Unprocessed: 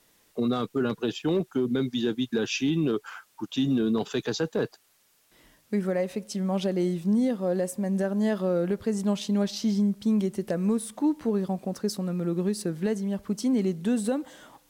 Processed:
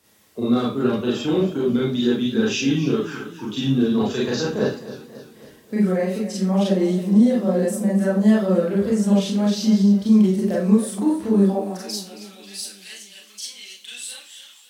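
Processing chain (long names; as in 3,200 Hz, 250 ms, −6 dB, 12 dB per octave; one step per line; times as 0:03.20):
tape wow and flutter 42 cents
high-pass filter sweep 77 Hz → 3,100 Hz, 0:11.26–0:11.88
four-comb reverb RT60 0.32 s, combs from 29 ms, DRR −5.5 dB
feedback echo with a swinging delay time 271 ms, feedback 54%, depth 82 cents, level −14.5 dB
level −1 dB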